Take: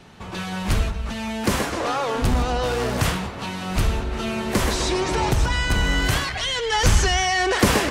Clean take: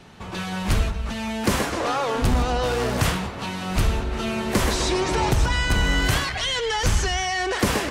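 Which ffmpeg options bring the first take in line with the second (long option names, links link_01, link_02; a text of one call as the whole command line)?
ffmpeg -i in.wav -af "asetnsamples=nb_out_samples=441:pad=0,asendcmd='6.72 volume volume -4dB',volume=0dB" out.wav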